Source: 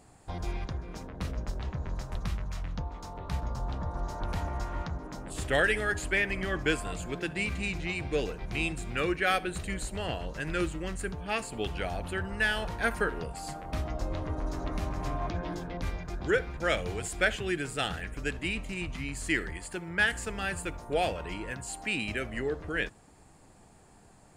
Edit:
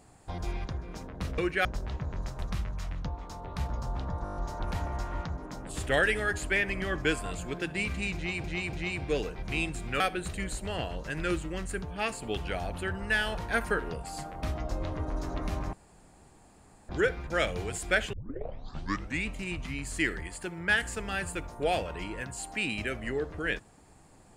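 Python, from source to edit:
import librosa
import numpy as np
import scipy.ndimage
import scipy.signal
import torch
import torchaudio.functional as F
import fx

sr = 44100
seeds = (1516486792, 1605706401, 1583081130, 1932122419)

y = fx.edit(x, sr, fx.stutter(start_s=3.97, slice_s=0.02, count=7),
    fx.repeat(start_s=7.76, length_s=0.29, count=3),
    fx.move(start_s=9.03, length_s=0.27, to_s=1.38),
    fx.room_tone_fill(start_s=15.03, length_s=1.16),
    fx.tape_start(start_s=17.43, length_s=1.15), tone=tone)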